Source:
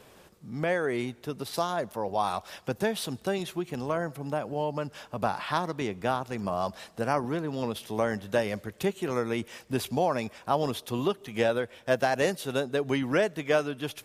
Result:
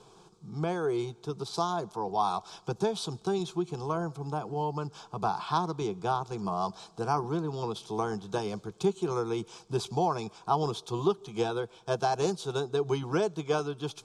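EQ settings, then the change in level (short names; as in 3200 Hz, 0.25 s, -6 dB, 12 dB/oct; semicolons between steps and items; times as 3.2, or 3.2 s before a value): LPF 7800 Hz 24 dB/oct; fixed phaser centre 380 Hz, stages 8; notch 2800 Hz, Q 9; +2.0 dB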